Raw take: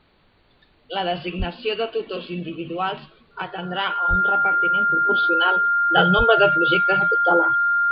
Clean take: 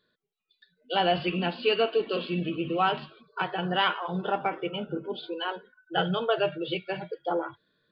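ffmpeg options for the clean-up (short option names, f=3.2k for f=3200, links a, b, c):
-filter_complex "[0:a]bandreject=f=1.4k:w=30,asplit=3[a][b][c];[a]afade=t=out:st=1.38:d=0.02[d];[b]highpass=f=140:w=0.5412,highpass=f=140:w=1.3066,afade=t=in:st=1.38:d=0.02,afade=t=out:st=1.5:d=0.02[e];[c]afade=t=in:st=1.5:d=0.02[f];[d][e][f]amix=inputs=3:normalize=0,asplit=3[g][h][i];[g]afade=t=out:st=4.09:d=0.02[j];[h]highpass=f=140:w=0.5412,highpass=f=140:w=1.3066,afade=t=in:st=4.09:d=0.02,afade=t=out:st=4.21:d=0.02[k];[i]afade=t=in:st=4.21:d=0.02[l];[j][k][l]amix=inputs=3:normalize=0,asplit=3[m][n][o];[m]afade=t=out:st=6.17:d=0.02[p];[n]highpass=f=140:w=0.5412,highpass=f=140:w=1.3066,afade=t=in:st=6.17:d=0.02,afade=t=out:st=6.29:d=0.02[q];[o]afade=t=in:st=6.29:d=0.02[r];[p][q][r]amix=inputs=3:normalize=0,agate=range=-21dB:threshold=-50dB,asetnsamples=n=441:p=0,asendcmd='5.09 volume volume -8.5dB',volume=0dB"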